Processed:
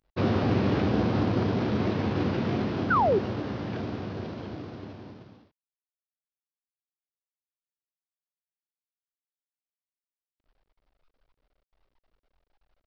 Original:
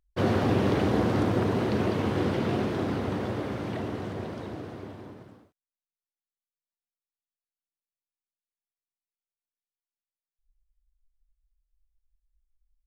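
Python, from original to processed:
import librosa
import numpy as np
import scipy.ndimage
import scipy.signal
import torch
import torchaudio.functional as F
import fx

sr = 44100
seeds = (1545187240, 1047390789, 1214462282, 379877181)

y = fx.cvsd(x, sr, bps=32000)
y = fx.formant_shift(y, sr, semitones=-3)
y = fx.spec_paint(y, sr, seeds[0], shape='fall', start_s=2.9, length_s=0.29, low_hz=350.0, high_hz=1600.0, level_db=-22.0)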